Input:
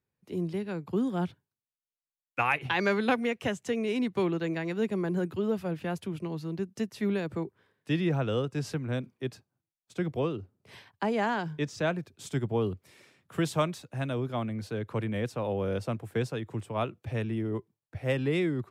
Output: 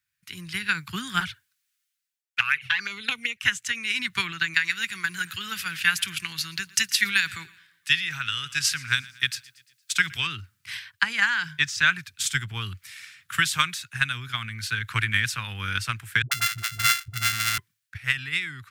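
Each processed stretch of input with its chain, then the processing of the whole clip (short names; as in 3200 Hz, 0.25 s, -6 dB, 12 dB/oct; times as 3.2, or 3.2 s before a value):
1.2–3.43 bell 470 Hz +10.5 dB 0.65 oct + envelope flanger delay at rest 5.9 ms, full sweep at -18.5 dBFS
4.54–10.27 tilt shelf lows -5 dB, about 1400 Hz + feedback echo 0.116 s, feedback 55%, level -22 dB
16.22–17.58 sample sorter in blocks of 64 samples + dispersion highs, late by 95 ms, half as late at 330 Hz
whole clip: EQ curve 110 Hz 0 dB, 560 Hz -28 dB, 1500 Hz +15 dB; transient shaper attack +8 dB, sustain +4 dB; AGC gain up to 9 dB; gain -5 dB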